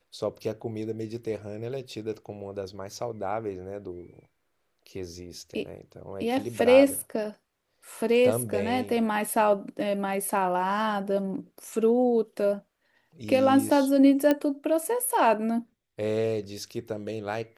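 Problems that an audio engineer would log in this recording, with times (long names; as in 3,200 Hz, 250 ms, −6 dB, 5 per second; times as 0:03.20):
0:14.31: click −11 dBFS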